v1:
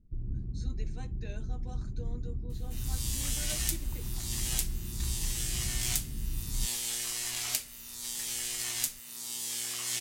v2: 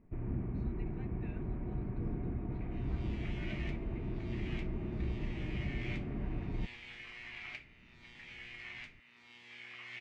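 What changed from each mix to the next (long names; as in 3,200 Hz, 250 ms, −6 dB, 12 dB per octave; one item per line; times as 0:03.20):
first sound: remove guitar amp tone stack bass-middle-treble 10-0-1
master: add transistor ladder low-pass 2,500 Hz, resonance 65%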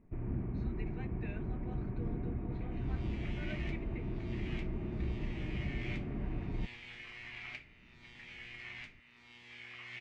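speech +7.0 dB
second sound: remove high-pass filter 170 Hz 6 dB per octave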